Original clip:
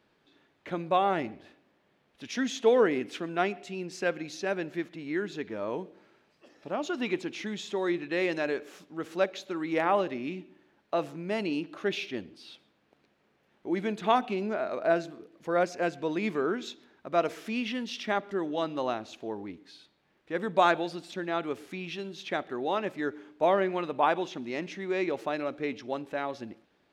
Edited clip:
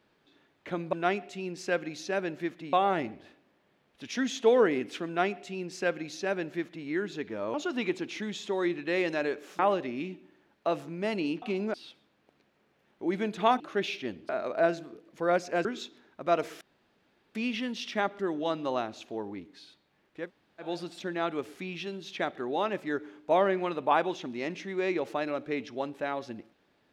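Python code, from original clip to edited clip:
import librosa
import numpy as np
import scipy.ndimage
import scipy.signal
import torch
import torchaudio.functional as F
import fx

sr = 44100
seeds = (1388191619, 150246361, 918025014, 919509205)

y = fx.edit(x, sr, fx.duplicate(start_s=3.27, length_s=1.8, to_s=0.93),
    fx.cut(start_s=5.74, length_s=1.04),
    fx.cut(start_s=8.83, length_s=1.03),
    fx.swap(start_s=11.69, length_s=0.69, other_s=14.24, other_length_s=0.32),
    fx.cut(start_s=15.92, length_s=0.59),
    fx.insert_room_tone(at_s=17.47, length_s=0.74),
    fx.room_tone_fill(start_s=20.35, length_s=0.43, crossfade_s=0.16), tone=tone)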